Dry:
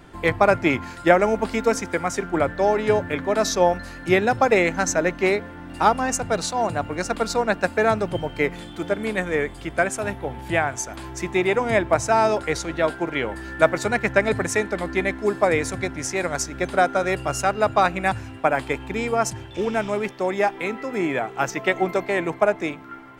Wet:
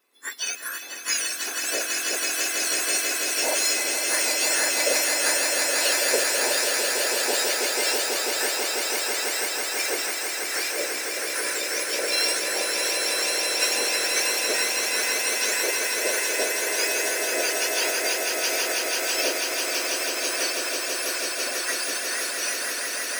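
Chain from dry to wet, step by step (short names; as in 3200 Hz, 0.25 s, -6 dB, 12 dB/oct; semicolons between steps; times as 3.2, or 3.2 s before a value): spectrum mirrored in octaves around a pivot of 1900 Hz; transient shaper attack -1 dB, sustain +8 dB; swelling echo 0.164 s, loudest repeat 8, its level -5 dB; wow and flutter 17 cents; upward expander 1.5:1, over -41 dBFS; gain -3.5 dB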